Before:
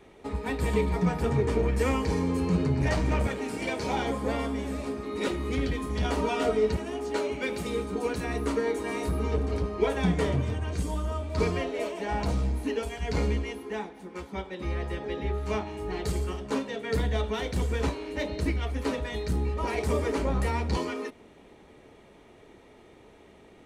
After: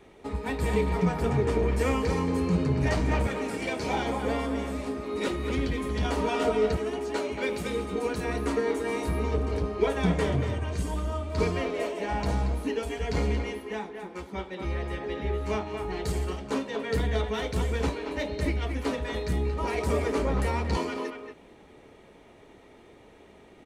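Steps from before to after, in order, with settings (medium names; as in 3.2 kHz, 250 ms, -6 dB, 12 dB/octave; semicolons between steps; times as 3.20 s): speakerphone echo 230 ms, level -6 dB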